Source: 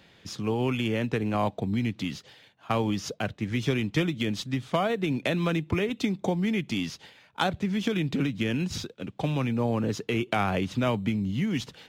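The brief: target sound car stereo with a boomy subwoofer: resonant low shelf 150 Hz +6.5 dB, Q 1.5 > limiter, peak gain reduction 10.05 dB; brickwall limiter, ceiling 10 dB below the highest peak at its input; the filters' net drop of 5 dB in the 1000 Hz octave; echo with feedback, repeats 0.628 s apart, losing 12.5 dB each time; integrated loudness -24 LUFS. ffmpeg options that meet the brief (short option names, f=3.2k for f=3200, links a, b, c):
-af "equalizer=f=1k:t=o:g=-7,alimiter=limit=-24dB:level=0:latency=1,lowshelf=f=150:t=q:w=1.5:g=6.5,aecho=1:1:628|1256|1884:0.237|0.0569|0.0137,volume=11dB,alimiter=limit=-15.5dB:level=0:latency=1"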